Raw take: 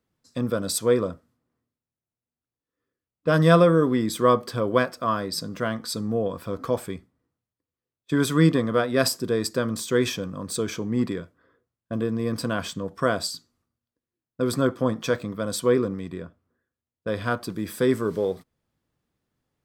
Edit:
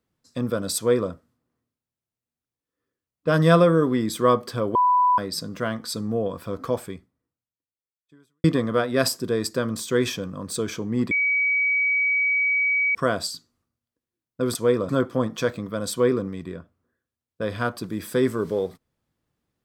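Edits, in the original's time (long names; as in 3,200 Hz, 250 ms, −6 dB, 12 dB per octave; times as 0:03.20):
0:00.77–0:01.11: duplicate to 0:14.55
0:04.75–0:05.18: beep over 993 Hz −15 dBFS
0:06.70–0:08.44: fade out quadratic
0:11.11–0:12.95: beep over 2,270 Hz −18.5 dBFS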